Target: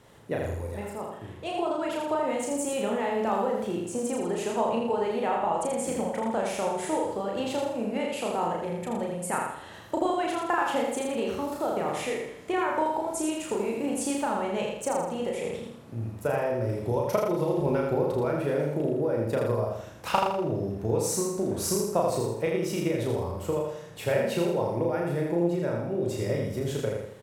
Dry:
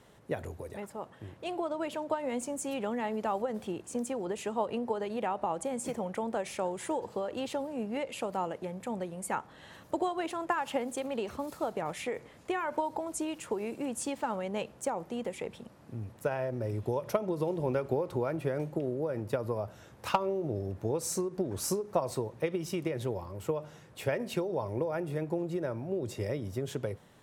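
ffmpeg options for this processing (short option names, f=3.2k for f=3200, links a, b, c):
-filter_complex "[0:a]asplit=2[a][b];[b]adelay=35,volume=-2.5dB[c];[a][c]amix=inputs=2:normalize=0,asplit=2[d][e];[e]aecho=0:1:81|162|243|324|405|486:0.668|0.294|0.129|0.0569|0.0251|0.011[f];[d][f]amix=inputs=2:normalize=0,volume=2dB"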